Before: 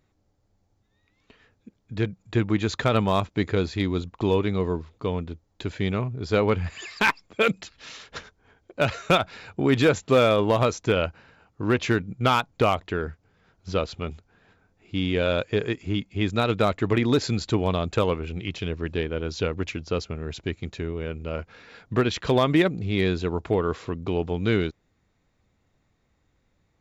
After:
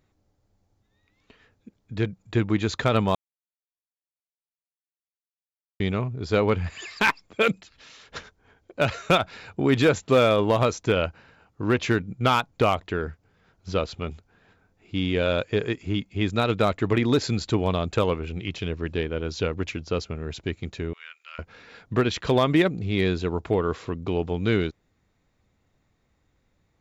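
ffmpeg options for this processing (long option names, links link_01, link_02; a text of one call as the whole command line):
ffmpeg -i in.wav -filter_complex "[0:a]asplit=3[link_01][link_02][link_03];[link_01]afade=type=out:start_time=7.59:duration=0.02[link_04];[link_02]acompressor=threshold=-47dB:ratio=3:attack=3.2:release=140:knee=1:detection=peak,afade=type=in:start_time=7.59:duration=0.02,afade=type=out:start_time=8.09:duration=0.02[link_05];[link_03]afade=type=in:start_time=8.09:duration=0.02[link_06];[link_04][link_05][link_06]amix=inputs=3:normalize=0,asettb=1/sr,asplit=3[link_07][link_08][link_09];[link_07]atrim=end=20.934[link_10];[link_08]atrim=start=20.93:end=21.39,asetpts=PTS-STARTPTS,afade=type=in:duration=0.004:curve=qsin,afade=type=out:start_time=0.456:duration=0.004:curve=qsin,highpass=frequency=1400:width=0.5412,highpass=frequency=1400:width=1.3066[link_11];[link_09]atrim=start=21.386[link_12];[link_10][link_11]acrossfade=duration=0.004:curve1=hsin:curve2=qsin[link_13];[link_13][link_12]acrossfade=duration=0.004:curve1=qsin:curve2=hsin,asplit=3[link_14][link_15][link_16];[link_14]atrim=end=3.15,asetpts=PTS-STARTPTS,afade=type=out:start_time=3.146:duration=0.004:curve=hsin[link_17];[link_15]atrim=start=3.15:end=5.8,asetpts=PTS-STARTPTS,volume=0[link_18];[link_16]atrim=start=5.8,asetpts=PTS-STARTPTS,afade=type=in:duration=0.004:curve=hsin[link_19];[link_17][link_18][link_19]concat=n=3:v=0:a=1" out.wav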